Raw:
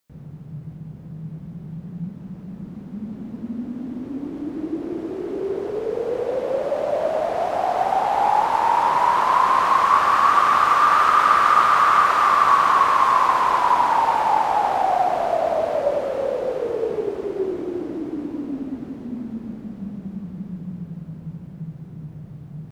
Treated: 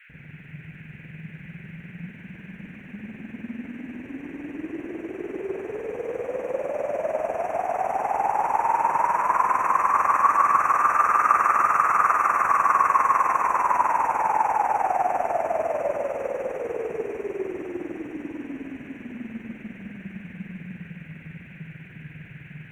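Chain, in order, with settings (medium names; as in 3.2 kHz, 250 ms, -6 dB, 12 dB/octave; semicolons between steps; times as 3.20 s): FFT band-reject 2.7–5.6 kHz; AM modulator 20 Hz, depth 45%; band noise 1.5–2.6 kHz -49 dBFS; on a send: thinning echo 150 ms, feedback 81%, high-pass 500 Hz, level -4 dB; on the sum: trim -3.5 dB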